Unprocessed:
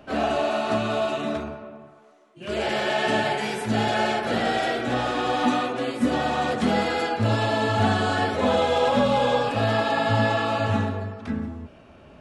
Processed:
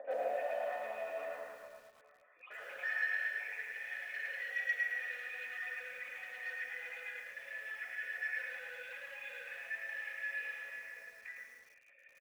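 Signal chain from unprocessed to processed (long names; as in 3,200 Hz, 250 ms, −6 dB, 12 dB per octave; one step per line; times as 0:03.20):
time-frequency cells dropped at random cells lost 29%
upward compression, threshold −43 dBFS
brickwall limiter −19 dBFS, peak gain reduction 8.5 dB
downward compressor 2.5 to 1, threshold −30 dBFS, peak gain reduction 5 dB
hard clipping −29.5 dBFS, distortion −13 dB
formant resonators in series e
soft clipping −38.5 dBFS, distortion −14 dB
high-pass filter sweep 660 Hz → 2,000 Hz, 0:00.18–0:03.87
on a send: repeating echo 146 ms, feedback 44%, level −12.5 dB
on the sum: rectangular room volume 2,000 cubic metres, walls furnished, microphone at 1.9 metres
feedback echo at a low word length 108 ms, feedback 35%, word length 11 bits, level −3 dB
level +4 dB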